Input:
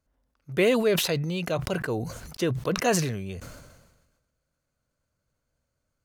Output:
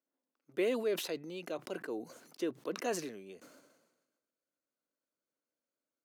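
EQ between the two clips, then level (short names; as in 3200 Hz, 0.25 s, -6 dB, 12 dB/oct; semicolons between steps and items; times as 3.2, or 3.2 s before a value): ladder high-pass 250 Hz, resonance 45%; -4.5 dB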